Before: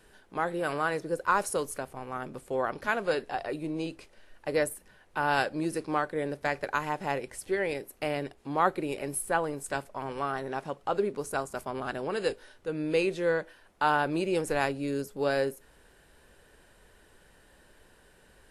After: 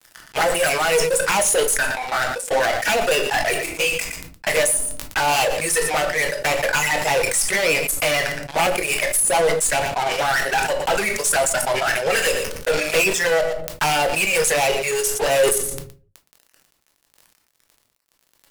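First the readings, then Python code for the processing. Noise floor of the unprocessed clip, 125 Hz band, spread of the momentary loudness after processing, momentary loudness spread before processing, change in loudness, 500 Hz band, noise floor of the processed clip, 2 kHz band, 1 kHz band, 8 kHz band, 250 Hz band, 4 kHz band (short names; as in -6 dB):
-60 dBFS, +5.5 dB, 5 LU, 9 LU, +12.0 dB, +10.0 dB, -66 dBFS, +13.5 dB, +8.5 dB, +22.0 dB, +0.5 dB, +19.0 dB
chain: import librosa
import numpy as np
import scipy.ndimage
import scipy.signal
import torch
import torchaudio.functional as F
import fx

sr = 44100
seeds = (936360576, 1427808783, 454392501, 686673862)

p1 = np.minimum(x, 2.0 * 10.0 ** (-17.5 / 20.0) - x)
p2 = fx.weighting(p1, sr, curve='ITU-R 468')
p3 = fx.dereverb_blind(p2, sr, rt60_s=1.9)
p4 = fx.low_shelf(p3, sr, hz=76.0, db=-8.5)
p5 = fx.level_steps(p4, sr, step_db=21)
p6 = p4 + F.gain(torch.from_numpy(p5), 0.5).numpy()
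p7 = fx.fixed_phaser(p6, sr, hz=1100.0, stages=6)
p8 = fx.env_flanger(p7, sr, rest_ms=9.9, full_db=-27.5)
p9 = fx.dmg_crackle(p8, sr, seeds[0], per_s=14.0, level_db=-53.0)
p10 = fx.fuzz(p9, sr, gain_db=43.0, gate_db=-52.0)
p11 = p10 + 10.0 ** (-19.5 / 20.0) * np.pad(p10, (int(117 * sr / 1000.0), 0))[:len(p10)]
p12 = fx.room_shoebox(p11, sr, seeds[1], volume_m3=130.0, walls='furnished', distance_m=0.65)
p13 = fx.sustainer(p12, sr, db_per_s=46.0)
y = F.gain(torch.from_numpy(p13), -4.0).numpy()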